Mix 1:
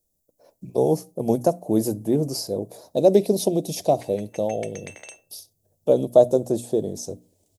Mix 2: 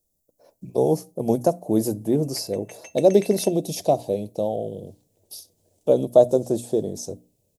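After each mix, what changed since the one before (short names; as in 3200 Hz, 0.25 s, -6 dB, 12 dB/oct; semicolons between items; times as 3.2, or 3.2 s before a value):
background: entry -1.65 s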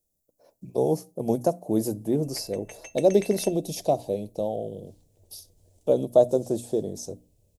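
speech -3.5 dB; background: remove HPF 150 Hz 12 dB/oct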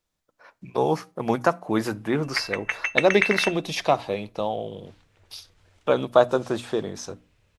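master: remove EQ curve 640 Hz 0 dB, 1300 Hz -28 dB, 2200 Hz -23 dB, 7300 Hz +3 dB, 14000 Hz +12 dB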